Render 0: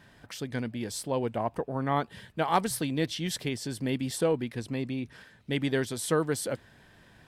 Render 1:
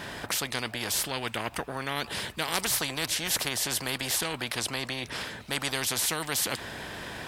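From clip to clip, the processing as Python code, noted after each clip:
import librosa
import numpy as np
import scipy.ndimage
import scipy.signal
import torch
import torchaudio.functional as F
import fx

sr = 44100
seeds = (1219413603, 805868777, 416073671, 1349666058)

y = fx.highpass(x, sr, hz=76.0, slope=6)
y = fx.spectral_comp(y, sr, ratio=4.0)
y = y * librosa.db_to_amplitude(2.0)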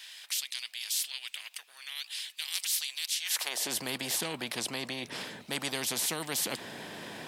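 y = fx.peak_eq(x, sr, hz=1400.0, db=-4.5, octaves=0.79)
y = fx.filter_sweep_highpass(y, sr, from_hz=3000.0, to_hz=180.0, start_s=3.19, end_s=3.76, q=1.1)
y = y * librosa.db_to_amplitude(-3.0)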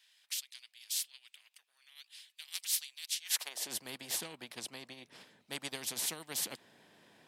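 y = fx.upward_expand(x, sr, threshold_db=-41.0, expansion=2.5)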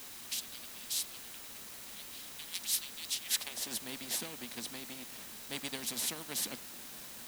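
y = fx.quant_dither(x, sr, seeds[0], bits=8, dither='triangular')
y = fx.small_body(y, sr, hz=(230.0, 3900.0), ring_ms=45, db=8)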